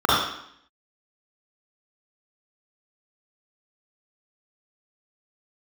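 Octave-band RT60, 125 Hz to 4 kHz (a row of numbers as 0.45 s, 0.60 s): 0.60 s, 0.80 s, 0.65 s, 0.70 s, 0.70 s, 0.70 s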